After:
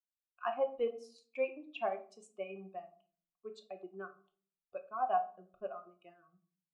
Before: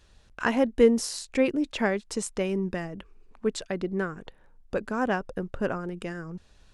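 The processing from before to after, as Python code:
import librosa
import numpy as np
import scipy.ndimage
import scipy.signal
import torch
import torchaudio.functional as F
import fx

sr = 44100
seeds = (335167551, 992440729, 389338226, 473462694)

y = fx.bin_expand(x, sr, power=2.0)
y = fx.peak_eq(y, sr, hz=92.0, db=-12.0, octaves=2.0)
y = fx.transient(y, sr, attack_db=-1, sustain_db=-8)
y = fx.vowel_filter(y, sr, vowel='a')
y = fx.room_shoebox(y, sr, seeds[0], volume_m3=370.0, walls='furnished', distance_m=0.97)
y = F.gain(torch.from_numpy(y), 5.5).numpy()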